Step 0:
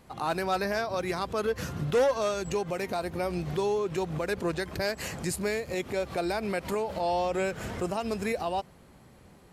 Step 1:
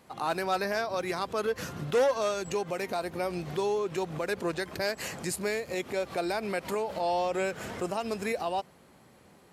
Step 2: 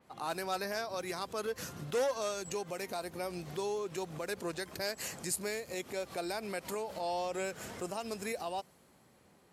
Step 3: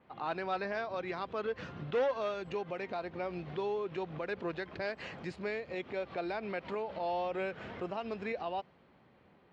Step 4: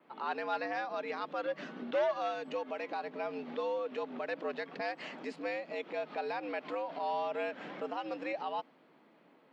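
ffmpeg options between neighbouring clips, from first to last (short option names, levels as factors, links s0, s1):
-af "highpass=f=220:p=1"
-af "adynamicequalizer=threshold=0.00282:dfrequency=4400:dqfactor=0.7:tfrequency=4400:tqfactor=0.7:attack=5:release=100:ratio=0.375:range=4:mode=boostabove:tftype=highshelf,volume=0.447"
-af "lowpass=f=3300:w=0.5412,lowpass=f=3300:w=1.3066,volume=1.12"
-af "afreqshift=92"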